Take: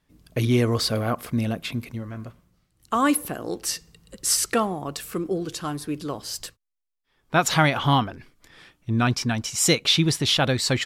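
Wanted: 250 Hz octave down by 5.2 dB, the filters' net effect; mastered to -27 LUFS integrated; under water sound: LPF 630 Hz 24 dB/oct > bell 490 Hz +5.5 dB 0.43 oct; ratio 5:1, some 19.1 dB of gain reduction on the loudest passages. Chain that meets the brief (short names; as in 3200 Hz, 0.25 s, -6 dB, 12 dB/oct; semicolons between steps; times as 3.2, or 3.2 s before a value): bell 250 Hz -7.5 dB; compressor 5:1, threshold -38 dBFS; LPF 630 Hz 24 dB/oct; bell 490 Hz +5.5 dB 0.43 oct; gain +16 dB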